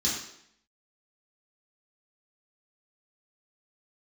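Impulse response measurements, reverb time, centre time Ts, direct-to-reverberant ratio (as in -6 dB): 0.70 s, 47 ms, -7.5 dB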